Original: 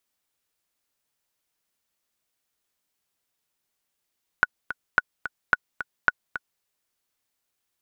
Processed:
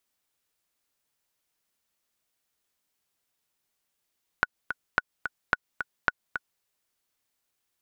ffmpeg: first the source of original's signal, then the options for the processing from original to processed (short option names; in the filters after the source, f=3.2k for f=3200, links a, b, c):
-f lavfi -i "aevalsrc='pow(10,(-4-12.5*gte(mod(t,2*60/218),60/218))/20)*sin(2*PI*1470*mod(t,60/218))*exp(-6.91*mod(t,60/218)/0.03)':d=2.2:s=44100"
-af "acompressor=threshold=-21dB:ratio=6"